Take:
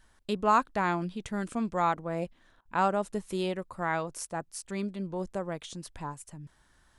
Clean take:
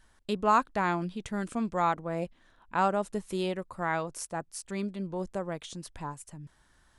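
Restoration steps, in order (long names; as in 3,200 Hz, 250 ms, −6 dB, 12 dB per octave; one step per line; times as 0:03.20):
repair the gap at 0:02.61, 44 ms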